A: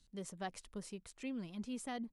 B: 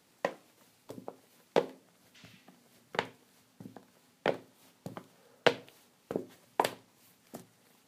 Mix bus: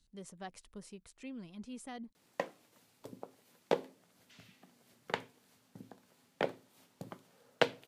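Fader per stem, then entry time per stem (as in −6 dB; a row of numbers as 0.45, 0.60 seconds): −3.5, −3.5 decibels; 0.00, 2.15 seconds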